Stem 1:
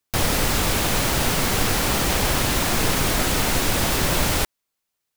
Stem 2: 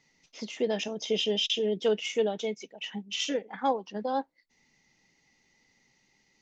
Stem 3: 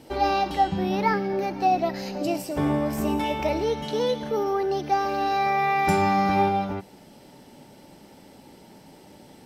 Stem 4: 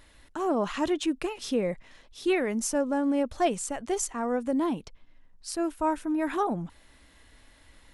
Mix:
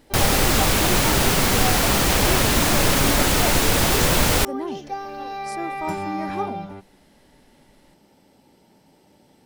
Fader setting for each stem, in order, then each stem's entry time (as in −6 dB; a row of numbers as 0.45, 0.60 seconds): +2.5, −17.0, −7.5, −4.0 decibels; 0.00, 1.55, 0.00, 0.00 seconds